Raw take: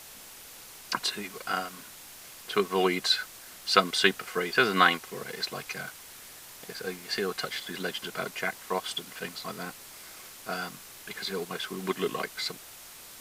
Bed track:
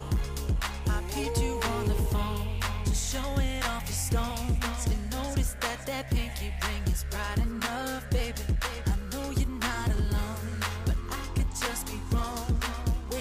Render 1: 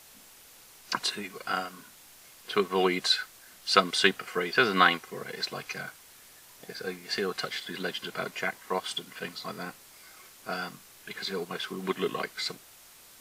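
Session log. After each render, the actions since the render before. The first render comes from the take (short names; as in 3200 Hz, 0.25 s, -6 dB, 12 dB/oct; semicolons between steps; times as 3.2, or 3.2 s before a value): noise print and reduce 6 dB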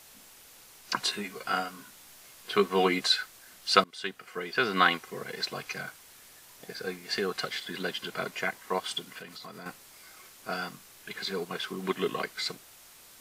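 0.97–3.07 doubler 15 ms -7 dB; 3.84–5.08 fade in, from -23 dB; 9.18–9.66 compressor, threshold -40 dBFS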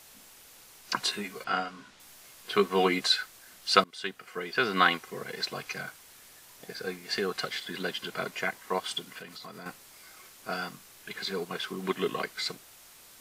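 1.44–2 LPF 4900 Hz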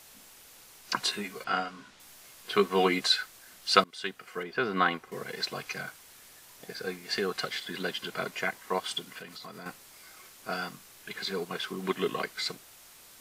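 4.43–5.12 high shelf 2300 Hz -12 dB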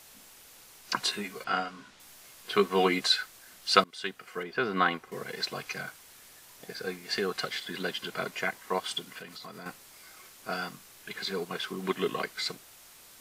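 nothing audible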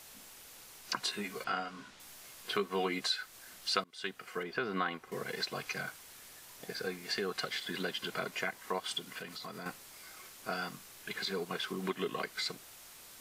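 compressor 2.5:1, threshold -34 dBFS, peak gain reduction 13 dB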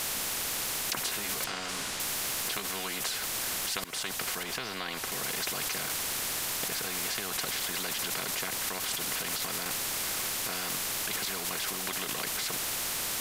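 in parallel at -1 dB: negative-ratio compressor -47 dBFS; on the sum: spectral compressor 4:1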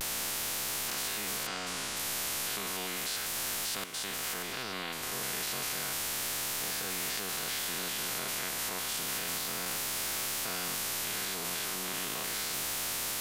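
stepped spectrum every 0.1 s; vibrato 0.33 Hz 29 cents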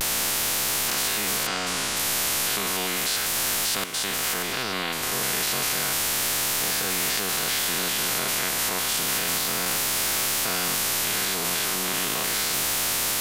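gain +9.5 dB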